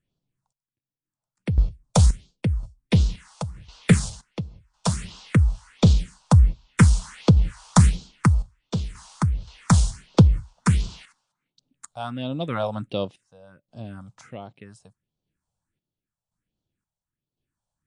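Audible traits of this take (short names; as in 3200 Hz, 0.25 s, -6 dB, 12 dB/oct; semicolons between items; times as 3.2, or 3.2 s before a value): phasing stages 4, 1.4 Hz, lowest notch 310–1900 Hz; random-step tremolo 1.9 Hz, depth 90%; MP3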